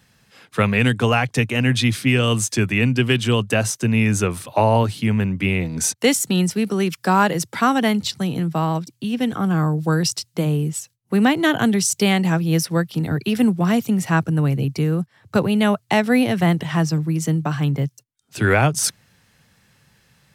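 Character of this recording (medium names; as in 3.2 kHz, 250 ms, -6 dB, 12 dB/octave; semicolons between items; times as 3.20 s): noise floor -64 dBFS; spectral tilt -5.0 dB/octave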